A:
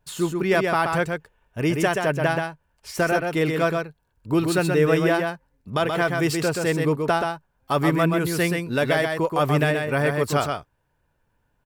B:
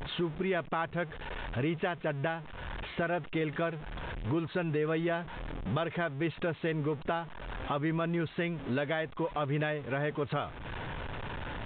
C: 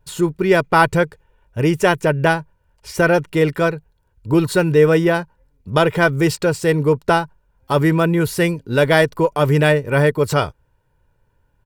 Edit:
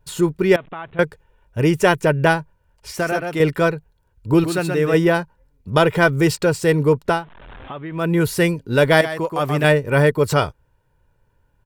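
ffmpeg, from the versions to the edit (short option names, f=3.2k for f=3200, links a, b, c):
-filter_complex "[1:a]asplit=2[a][b];[0:a]asplit=3[c][d][e];[2:a]asplit=6[f][g][h][i][j][k];[f]atrim=end=0.562[l];[a]atrim=start=0.558:end=0.992[m];[g]atrim=start=0.988:end=2.952[n];[c]atrim=start=2.948:end=3.402[o];[h]atrim=start=3.398:end=4.442[p];[d]atrim=start=4.438:end=4.942[q];[i]atrim=start=4.938:end=7.27[r];[b]atrim=start=7.03:end=8.16[s];[j]atrim=start=7.92:end=9.012[t];[e]atrim=start=9.008:end=9.642[u];[k]atrim=start=9.638[v];[l][m]acrossfade=d=0.004:c1=hsin:c2=hsin[w];[w][n]acrossfade=d=0.004:c1=hsin:c2=hsin[x];[x][o]acrossfade=d=0.004:c1=hsin:c2=hsin[y];[y][p]acrossfade=d=0.004:c1=hsin:c2=hsin[z];[z][q]acrossfade=d=0.004:c1=hsin:c2=hsin[aa];[aa][r]acrossfade=d=0.004:c1=hsin:c2=hsin[ab];[ab][s]acrossfade=d=0.24:c1=tri:c2=tri[ac];[ac][t]acrossfade=d=0.24:c1=tri:c2=tri[ad];[ad][u]acrossfade=d=0.004:c1=hsin:c2=hsin[ae];[ae][v]acrossfade=d=0.004:c1=hsin:c2=hsin"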